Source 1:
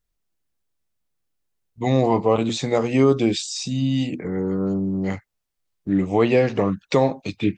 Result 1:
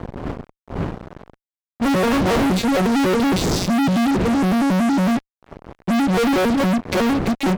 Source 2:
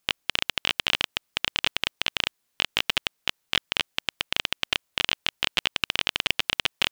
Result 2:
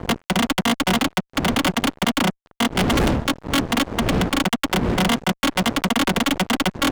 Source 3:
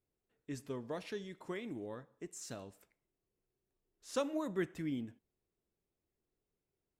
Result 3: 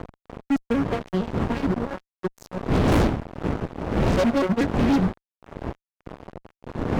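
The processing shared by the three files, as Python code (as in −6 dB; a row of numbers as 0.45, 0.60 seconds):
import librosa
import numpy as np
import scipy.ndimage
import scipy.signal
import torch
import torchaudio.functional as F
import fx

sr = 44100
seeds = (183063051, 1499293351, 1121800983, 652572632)

y = fx.vocoder_arp(x, sr, chord='major triad', root=54, every_ms=92)
y = fx.dmg_wind(y, sr, seeds[0], corner_hz=300.0, level_db=-39.0)
y = fx.fuzz(y, sr, gain_db=40.0, gate_db=-46.0)
y = y * 10.0 ** (-3.0 / 20.0)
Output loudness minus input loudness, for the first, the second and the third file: +3.0, +5.5, +17.5 LU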